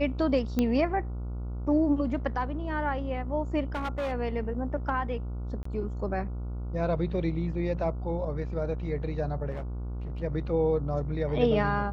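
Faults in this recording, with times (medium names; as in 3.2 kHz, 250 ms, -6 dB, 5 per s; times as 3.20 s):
buzz 60 Hz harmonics 24 -34 dBFS
0.59 s: pop -14 dBFS
3.74–4.13 s: clipped -27.5 dBFS
5.63–5.65 s: dropout 24 ms
9.50–10.22 s: clipped -31.5 dBFS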